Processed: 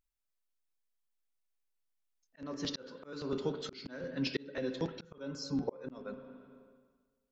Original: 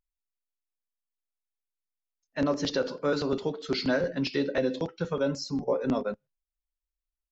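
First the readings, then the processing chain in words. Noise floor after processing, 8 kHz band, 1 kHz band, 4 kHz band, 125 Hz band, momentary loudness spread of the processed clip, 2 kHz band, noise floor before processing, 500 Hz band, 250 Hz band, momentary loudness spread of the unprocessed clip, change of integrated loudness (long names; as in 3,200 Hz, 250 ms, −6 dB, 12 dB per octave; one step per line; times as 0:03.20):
−83 dBFS, can't be measured, −12.5 dB, −7.0 dB, −8.0 dB, 12 LU, −11.5 dB, below −85 dBFS, −12.0 dB, −9.0 dB, 4 LU, −10.0 dB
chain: dynamic equaliser 670 Hz, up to −6 dB, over −43 dBFS, Q 2.3
spring reverb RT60 1.5 s, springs 36/55/59 ms, chirp 70 ms, DRR 12 dB
volume swells 708 ms
level +1 dB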